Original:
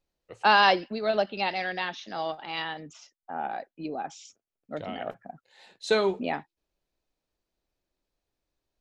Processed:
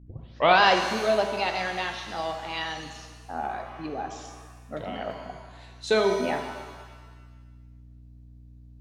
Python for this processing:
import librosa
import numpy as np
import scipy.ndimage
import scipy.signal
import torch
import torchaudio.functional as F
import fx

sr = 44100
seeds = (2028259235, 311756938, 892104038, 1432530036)

y = fx.tape_start_head(x, sr, length_s=0.6)
y = fx.add_hum(y, sr, base_hz=60, snr_db=20)
y = fx.rev_shimmer(y, sr, seeds[0], rt60_s=1.4, semitones=7, shimmer_db=-8, drr_db=5.0)